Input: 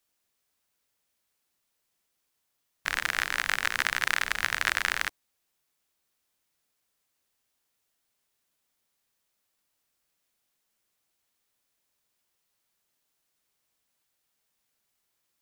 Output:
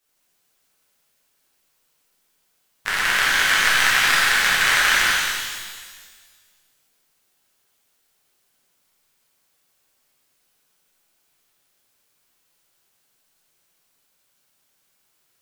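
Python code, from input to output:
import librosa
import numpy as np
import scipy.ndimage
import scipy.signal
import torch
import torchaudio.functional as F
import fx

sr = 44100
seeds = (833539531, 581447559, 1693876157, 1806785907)

y = x + 10.0 ** (-8.5 / 20.0) * np.pad(x, (int(175 * sr / 1000.0), 0))[:len(x)]
y = fx.rev_shimmer(y, sr, seeds[0], rt60_s=1.6, semitones=12, shimmer_db=-8, drr_db=-8.0)
y = F.gain(torch.from_numpy(y), 1.5).numpy()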